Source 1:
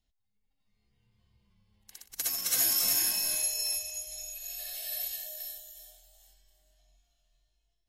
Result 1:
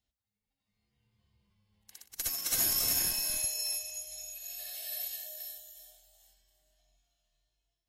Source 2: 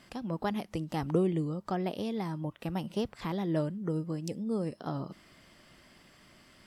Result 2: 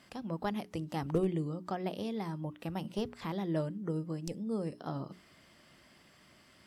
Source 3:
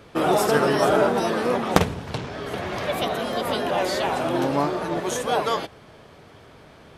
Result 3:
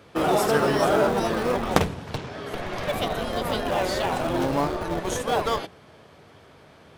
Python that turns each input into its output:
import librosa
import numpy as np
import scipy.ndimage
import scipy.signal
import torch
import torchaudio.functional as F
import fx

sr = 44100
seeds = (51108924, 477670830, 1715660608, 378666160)

p1 = scipy.signal.sosfilt(scipy.signal.butter(2, 51.0, 'highpass', fs=sr, output='sos'), x)
p2 = fx.hum_notches(p1, sr, base_hz=60, count=7)
p3 = fx.schmitt(p2, sr, flips_db=-20.5)
p4 = p2 + F.gain(torch.from_numpy(p3), -7.5).numpy()
y = F.gain(torch.from_numpy(p4), -2.5).numpy()